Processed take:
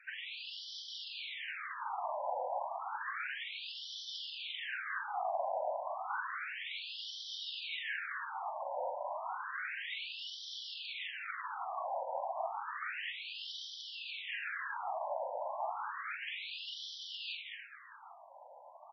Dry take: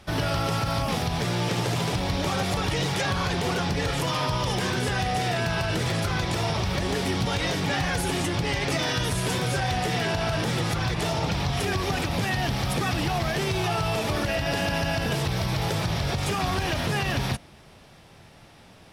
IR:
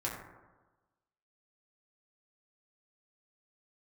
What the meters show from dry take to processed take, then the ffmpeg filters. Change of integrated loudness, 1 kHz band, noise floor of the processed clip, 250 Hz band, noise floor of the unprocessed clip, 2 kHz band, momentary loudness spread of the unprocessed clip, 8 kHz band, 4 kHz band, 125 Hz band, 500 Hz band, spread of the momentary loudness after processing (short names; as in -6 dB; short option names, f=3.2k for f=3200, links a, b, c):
-14.0 dB, -10.0 dB, -55 dBFS, under -40 dB, -51 dBFS, -11.0 dB, 1 LU, -26.0 dB, -12.0 dB, under -40 dB, -14.0 dB, 5 LU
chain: -filter_complex "[0:a]highpass=f=310:p=1,afftfilt=real='hypot(re,im)*cos(2*PI*random(0))':imag='hypot(re,im)*sin(2*PI*random(1))':win_size=512:overlap=0.75,acompressor=threshold=-38dB:ratio=16,aemphasis=mode=reproduction:type=bsi,asplit=2[a][b];[b]aecho=0:1:45|217|237|296|319|789:0.596|0.335|0.473|0.266|0.266|0.188[c];[a][c]amix=inputs=2:normalize=0,afftfilt=real='re*between(b*sr/1024,720*pow(4300/720,0.5+0.5*sin(2*PI*0.31*pts/sr))/1.41,720*pow(4300/720,0.5+0.5*sin(2*PI*0.31*pts/sr))*1.41)':imag='im*between(b*sr/1024,720*pow(4300/720,0.5+0.5*sin(2*PI*0.31*pts/sr))/1.41,720*pow(4300/720,0.5+0.5*sin(2*PI*0.31*pts/sr))*1.41)':win_size=1024:overlap=0.75,volume=7dB"